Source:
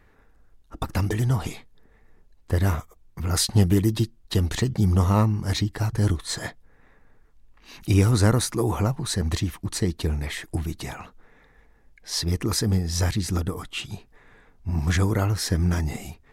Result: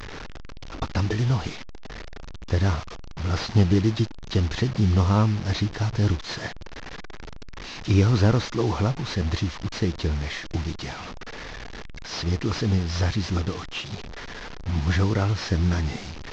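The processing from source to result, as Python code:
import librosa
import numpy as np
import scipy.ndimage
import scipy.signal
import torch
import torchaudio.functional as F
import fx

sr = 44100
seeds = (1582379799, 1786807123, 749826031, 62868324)

y = fx.delta_mod(x, sr, bps=32000, step_db=-30.5)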